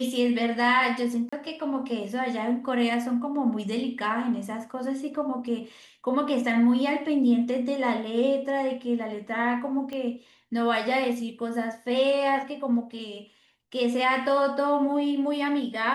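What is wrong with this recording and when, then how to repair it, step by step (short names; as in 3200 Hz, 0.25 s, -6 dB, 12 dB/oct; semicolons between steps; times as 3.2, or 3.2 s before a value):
1.29–1.32 gap 35 ms
9.93 pop -23 dBFS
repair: de-click; interpolate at 1.29, 35 ms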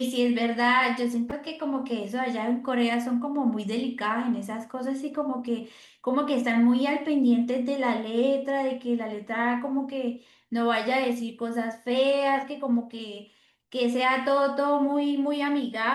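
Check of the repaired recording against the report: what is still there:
none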